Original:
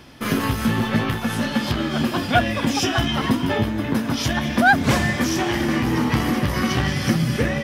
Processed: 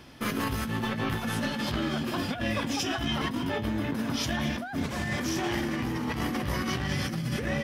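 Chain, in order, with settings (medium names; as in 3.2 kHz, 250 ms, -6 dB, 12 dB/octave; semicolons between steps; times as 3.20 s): compressor with a negative ratio -23 dBFS, ratio -1; trim -7 dB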